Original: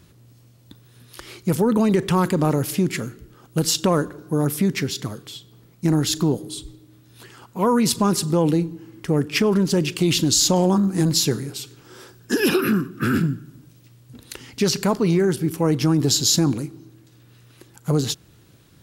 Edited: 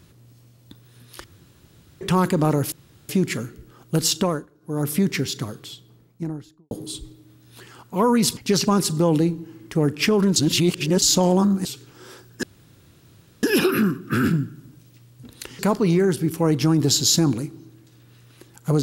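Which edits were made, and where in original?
1.24–2.01 s: room tone
2.72 s: insert room tone 0.37 s
3.79–4.55 s: dip -18 dB, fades 0.32 s
5.20–6.34 s: studio fade out
9.69–10.35 s: reverse
10.98–11.55 s: delete
12.33 s: insert room tone 1.00 s
14.49–14.79 s: move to 8.00 s

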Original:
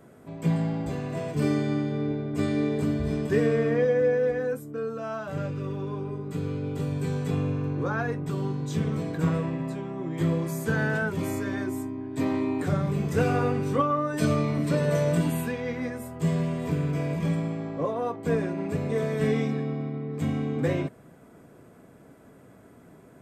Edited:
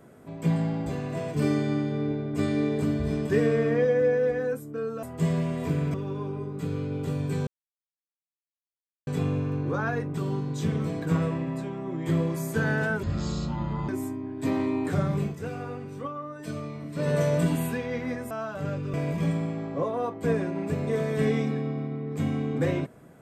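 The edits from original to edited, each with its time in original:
5.03–5.66 s: swap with 16.05–16.96 s
7.19 s: insert silence 1.60 s
11.15–11.63 s: speed 56%
12.96–14.83 s: dip -11 dB, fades 0.14 s

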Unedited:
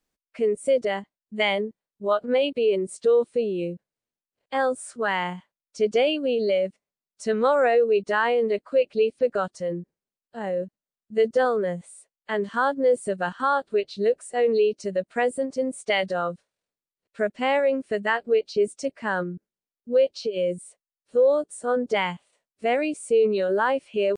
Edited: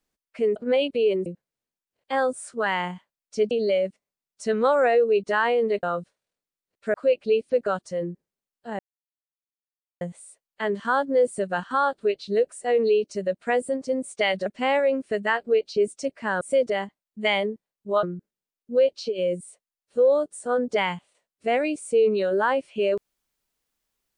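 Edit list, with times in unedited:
0.56–2.18 s: move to 19.21 s
2.88–3.68 s: delete
5.93–6.31 s: delete
10.48–11.70 s: mute
16.15–17.26 s: move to 8.63 s

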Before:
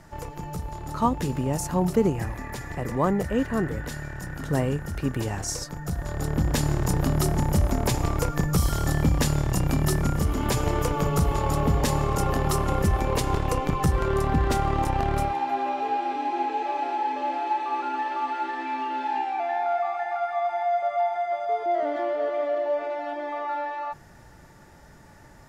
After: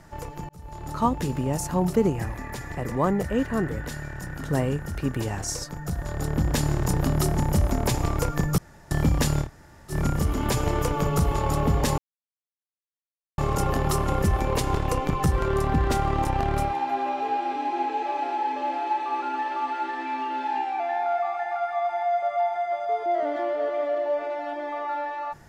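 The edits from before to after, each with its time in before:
0.49–0.85 s: fade in
8.58–8.91 s: room tone
9.45–9.93 s: room tone, crossfade 0.10 s
11.98 s: insert silence 1.40 s

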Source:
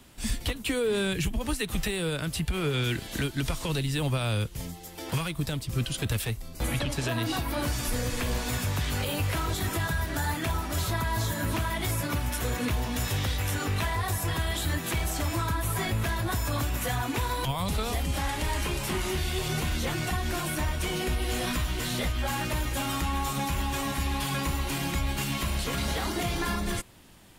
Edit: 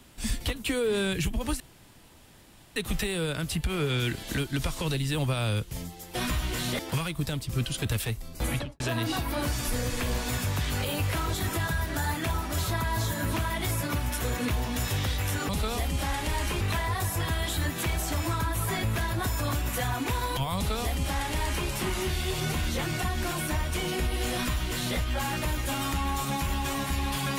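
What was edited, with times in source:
1.60 s: insert room tone 1.16 s
6.72–7.00 s: studio fade out
17.64–18.76 s: copy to 13.69 s
21.41–22.05 s: copy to 4.99 s

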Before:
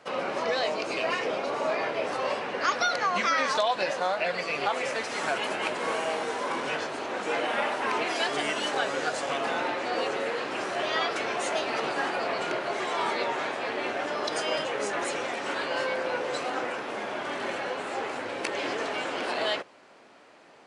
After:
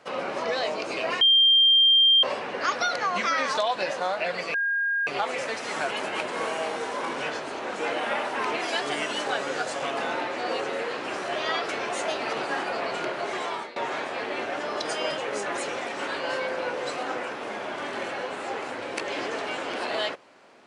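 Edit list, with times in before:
1.21–2.23 s: bleep 3.18 kHz -14.5 dBFS
4.54 s: add tone 1.62 kHz -22.5 dBFS 0.53 s
12.89–13.23 s: fade out, to -21.5 dB

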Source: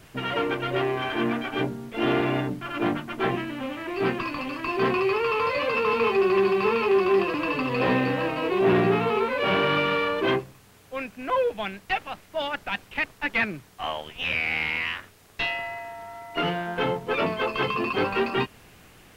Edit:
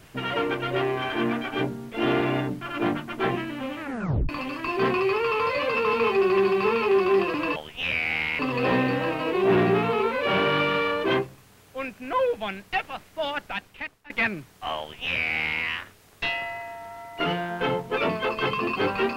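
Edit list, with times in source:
3.80 s: tape stop 0.49 s
12.56–13.27 s: fade out, to -23.5 dB
13.97–14.80 s: copy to 7.56 s

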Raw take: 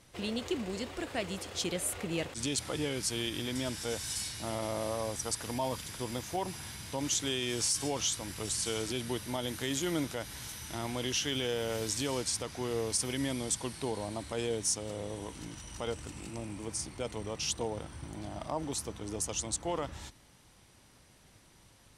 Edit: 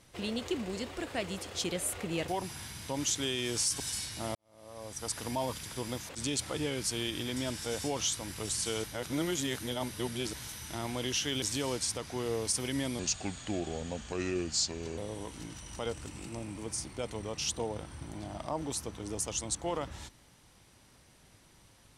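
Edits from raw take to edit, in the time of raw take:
2.28–4.03 s: swap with 6.32–7.84 s
4.58–5.38 s: fade in quadratic
8.84–10.33 s: reverse
11.42–11.87 s: delete
13.44–14.99 s: speed 78%

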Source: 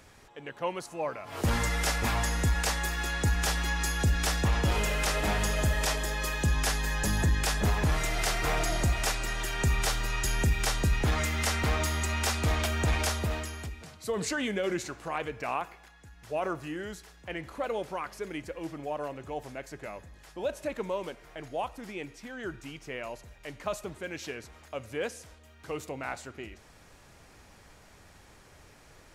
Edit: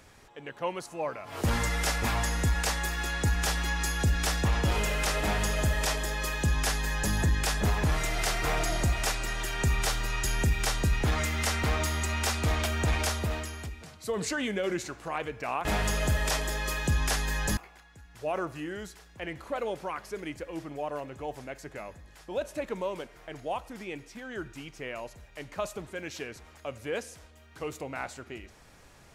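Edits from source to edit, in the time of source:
5.21–7.13 s: copy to 15.65 s

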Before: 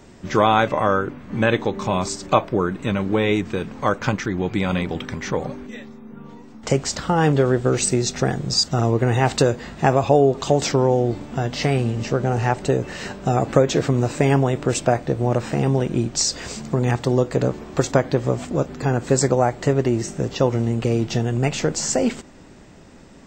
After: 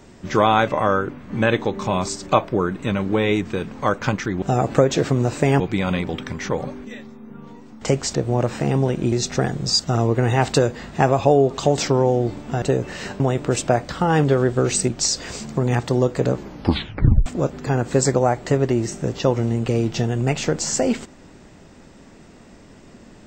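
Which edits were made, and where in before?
6.97–7.96 s: swap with 15.07–16.04 s
11.46–12.62 s: delete
13.20–14.38 s: move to 4.42 s
17.54 s: tape stop 0.88 s

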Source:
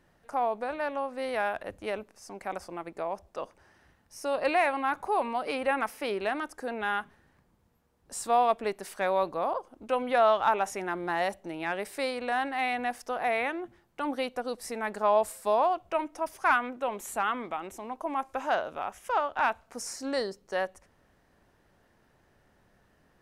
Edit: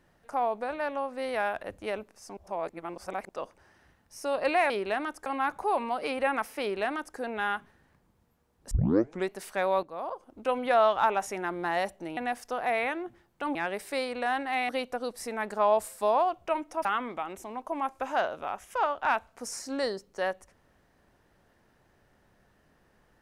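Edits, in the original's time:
2.37–3.29 s: reverse
6.05–6.61 s: copy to 4.70 s
8.15 s: tape start 0.58 s
9.27–9.86 s: fade in, from -12.5 dB
11.61–12.75 s: move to 14.13 s
16.29–17.19 s: delete

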